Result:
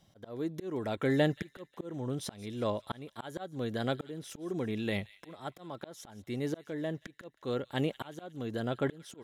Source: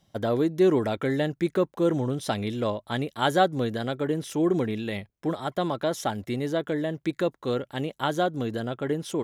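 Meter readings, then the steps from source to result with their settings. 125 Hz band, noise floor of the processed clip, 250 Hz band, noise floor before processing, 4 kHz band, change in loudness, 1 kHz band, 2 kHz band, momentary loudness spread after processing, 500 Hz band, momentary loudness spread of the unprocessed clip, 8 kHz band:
−7.0 dB, −68 dBFS, −9.0 dB, −71 dBFS, −8.5 dB, −9.0 dB, −13.0 dB, −7.5 dB, 13 LU, −10.0 dB, 8 LU, −8.0 dB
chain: volume swells 657 ms
delay with a high-pass on its return 179 ms, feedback 50%, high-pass 2,300 Hz, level −16.5 dB

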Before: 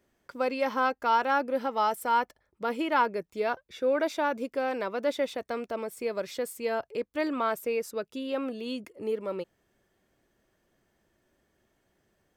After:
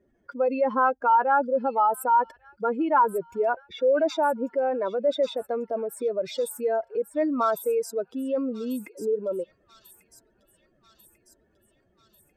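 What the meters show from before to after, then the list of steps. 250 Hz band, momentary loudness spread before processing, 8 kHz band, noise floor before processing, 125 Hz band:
+3.5 dB, 9 LU, +4.0 dB, −74 dBFS, can't be measured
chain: expanding power law on the bin magnitudes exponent 2
delay with a high-pass on its return 1,143 ms, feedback 60%, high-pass 3,900 Hz, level −9 dB
level +5 dB

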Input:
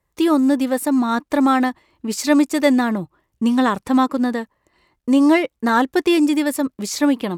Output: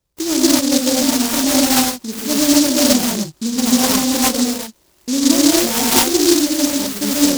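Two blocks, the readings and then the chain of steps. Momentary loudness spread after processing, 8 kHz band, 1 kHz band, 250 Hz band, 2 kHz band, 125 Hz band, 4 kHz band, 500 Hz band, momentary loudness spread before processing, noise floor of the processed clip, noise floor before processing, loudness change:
8 LU, +16.5 dB, −2.0 dB, +1.5 dB, 0.0 dB, +4.0 dB, +13.0 dB, +1.0 dB, 9 LU, −57 dBFS, −74 dBFS, +3.5 dB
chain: in parallel at −2.5 dB: downward compressor, threshold −22 dBFS, peak gain reduction 12 dB
on the sum: reverb whose tail is shaped and stops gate 280 ms rising, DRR −7.5 dB
short delay modulated by noise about 5,400 Hz, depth 0.23 ms
level −7 dB

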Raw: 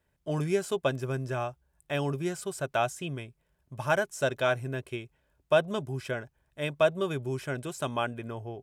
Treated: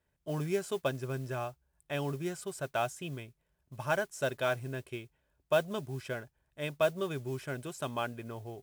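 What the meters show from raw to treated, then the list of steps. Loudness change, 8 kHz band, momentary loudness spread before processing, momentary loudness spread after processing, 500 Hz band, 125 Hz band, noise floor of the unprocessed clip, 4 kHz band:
−4.5 dB, −3.5 dB, 12 LU, 12 LU, −4.5 dB, −4.5 dB, −75 dBFS, −4.5 dB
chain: noise that follows the level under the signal 23 dB
level −4.5 dB

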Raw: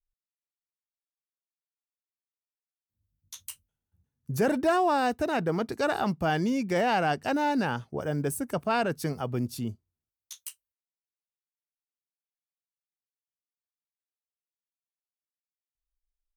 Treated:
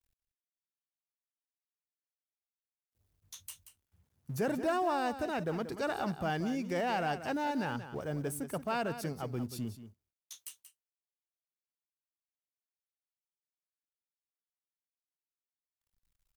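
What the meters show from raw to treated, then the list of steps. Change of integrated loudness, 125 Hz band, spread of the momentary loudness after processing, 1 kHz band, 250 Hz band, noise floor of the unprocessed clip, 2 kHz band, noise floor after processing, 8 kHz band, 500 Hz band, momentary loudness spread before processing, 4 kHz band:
−7.0 dB, −6.5 dB, 16 LU, −7.0 dB, −7.0 dB, below −85 dBFS, −7.0 dB, below −85 dBFS, −5.5 dB, −7.0 dB, 18 LU, −6.5 dB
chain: mu-law and A-law mismatch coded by mu
on a send: single-tap delay 182 ms −11.5 dB
on the sum: level −8 dB

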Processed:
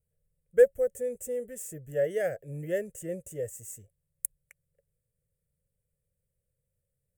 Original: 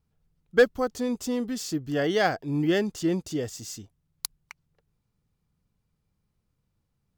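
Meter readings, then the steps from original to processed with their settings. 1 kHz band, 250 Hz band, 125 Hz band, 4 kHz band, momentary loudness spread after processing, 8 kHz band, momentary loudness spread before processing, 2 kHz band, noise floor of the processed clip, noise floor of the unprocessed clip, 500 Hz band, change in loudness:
−17.5 dB, −16.5 dB, −8.5 dB, below −20 dB, 16 LU, −2.0 dB, 14 LU, −10.5 dB, −83 dBFS, −77 dBFS, −0.5 dB, −3.5 dB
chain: drawn EQ curve 140 Hz 0 dB, 290 Hz −16 dB, 550 Hz +12 dB, 940 Hz −29 dB, 1,800 Hz −1 dB, 2,900 Hz −11 dB, 4,300 Hz −30 dB, 8,300 Hz +11 dB, 16,000 Hz +7 dB
level −6.5 dB

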